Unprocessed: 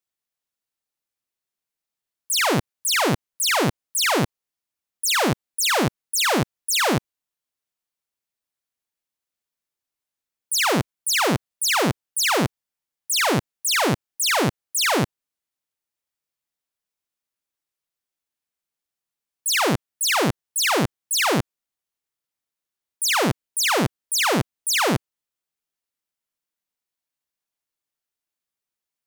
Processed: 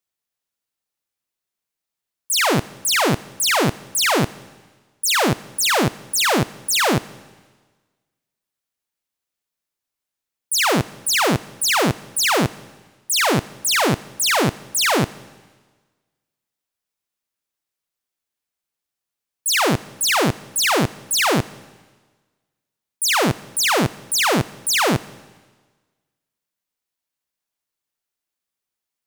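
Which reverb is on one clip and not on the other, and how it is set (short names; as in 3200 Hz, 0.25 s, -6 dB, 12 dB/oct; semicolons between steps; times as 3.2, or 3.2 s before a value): digital reverb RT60 1.4 s, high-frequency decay 1×, pre-delay 10 ms, DRR 19 dB; gain +2.5 dB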